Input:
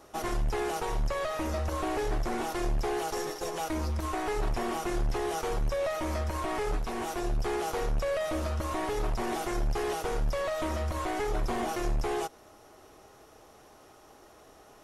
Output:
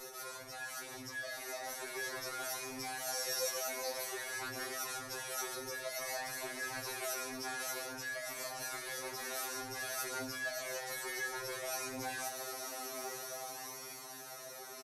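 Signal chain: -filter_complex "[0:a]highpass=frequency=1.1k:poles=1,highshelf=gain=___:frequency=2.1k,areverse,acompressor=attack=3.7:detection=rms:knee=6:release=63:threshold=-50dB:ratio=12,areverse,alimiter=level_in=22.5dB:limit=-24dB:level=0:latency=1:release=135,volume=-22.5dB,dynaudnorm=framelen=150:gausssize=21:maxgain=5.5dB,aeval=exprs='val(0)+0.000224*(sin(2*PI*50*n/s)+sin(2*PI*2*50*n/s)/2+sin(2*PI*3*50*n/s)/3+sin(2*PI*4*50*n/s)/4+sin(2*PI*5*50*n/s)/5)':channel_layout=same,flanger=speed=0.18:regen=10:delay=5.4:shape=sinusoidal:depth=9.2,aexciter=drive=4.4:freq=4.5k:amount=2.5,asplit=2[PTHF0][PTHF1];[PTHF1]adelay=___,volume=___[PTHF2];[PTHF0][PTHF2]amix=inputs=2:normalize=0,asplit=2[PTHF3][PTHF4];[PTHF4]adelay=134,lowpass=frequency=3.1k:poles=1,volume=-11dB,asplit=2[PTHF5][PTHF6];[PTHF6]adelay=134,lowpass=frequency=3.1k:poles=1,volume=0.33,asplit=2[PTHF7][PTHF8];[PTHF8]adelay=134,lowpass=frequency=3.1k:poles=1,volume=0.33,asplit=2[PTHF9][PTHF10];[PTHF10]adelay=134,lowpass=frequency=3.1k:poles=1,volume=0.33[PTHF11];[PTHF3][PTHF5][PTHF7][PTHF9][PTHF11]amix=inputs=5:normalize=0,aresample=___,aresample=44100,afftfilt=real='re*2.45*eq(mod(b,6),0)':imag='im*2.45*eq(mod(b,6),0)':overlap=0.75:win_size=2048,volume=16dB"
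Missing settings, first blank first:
-5, 15, -5.5dB, 32000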